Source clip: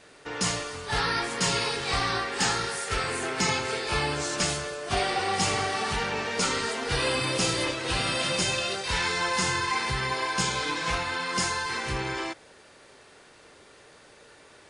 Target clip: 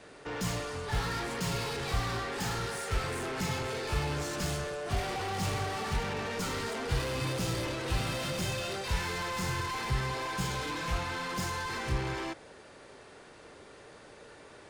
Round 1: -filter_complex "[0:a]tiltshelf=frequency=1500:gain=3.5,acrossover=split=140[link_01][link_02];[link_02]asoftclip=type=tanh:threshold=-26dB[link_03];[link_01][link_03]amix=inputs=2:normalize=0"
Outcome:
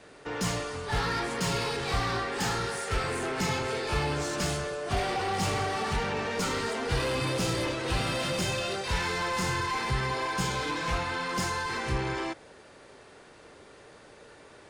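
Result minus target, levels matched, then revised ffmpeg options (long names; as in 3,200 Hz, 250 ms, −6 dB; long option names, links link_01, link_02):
soft clipping: distortion −5 dB
-filter_complex "[0:a]tiltshelf=frequency=1500:gain=3.5,acrossover=split=140[link_01][link_02];[link_02]asoftclip=type=tanh:threshold=-33.5dB[link_03];[link_01][link_03]amix=inputs=2:normalize=0"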